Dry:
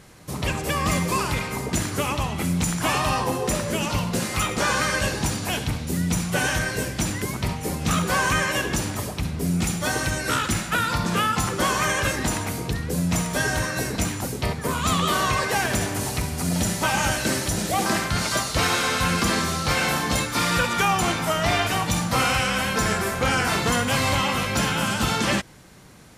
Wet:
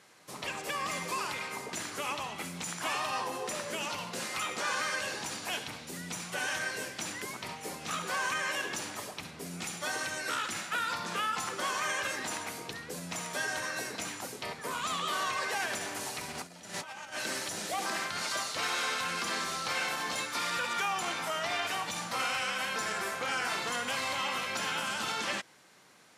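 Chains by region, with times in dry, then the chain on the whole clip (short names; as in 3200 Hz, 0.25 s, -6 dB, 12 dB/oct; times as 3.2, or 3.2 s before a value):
16.28–17.19 high shelf 5800 Hz -5.5 dB + negative-ratio compressor -29 dBFS, ratio -0.5 + Doppler distortion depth 0.14 ms
whole clip: limiter -15.5 dBFS; weighting filter A; gain -7.5 dB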